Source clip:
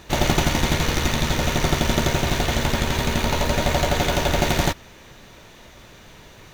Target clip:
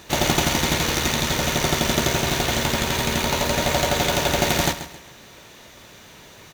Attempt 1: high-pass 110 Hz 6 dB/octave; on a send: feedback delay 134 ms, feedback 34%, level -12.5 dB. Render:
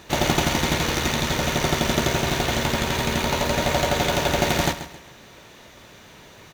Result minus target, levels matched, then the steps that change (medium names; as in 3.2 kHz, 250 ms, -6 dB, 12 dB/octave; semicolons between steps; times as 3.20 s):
8 kHz band -2.5 dB
add after high-pass: treble shelf 4.2 kHz +5.5 dB